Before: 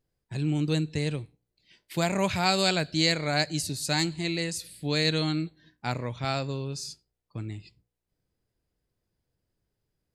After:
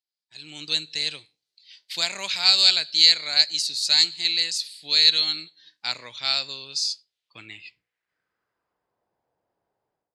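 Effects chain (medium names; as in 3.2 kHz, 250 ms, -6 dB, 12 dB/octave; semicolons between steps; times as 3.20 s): band-pass sweep 4.3 kHz -> 810 Hz, 6.93–9.04 s; level rider gain up to 16 dB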